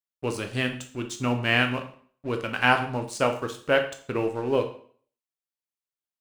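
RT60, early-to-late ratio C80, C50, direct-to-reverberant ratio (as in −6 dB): 0.50 s, 14.5 dB, 10.0 dB, 5.0 dB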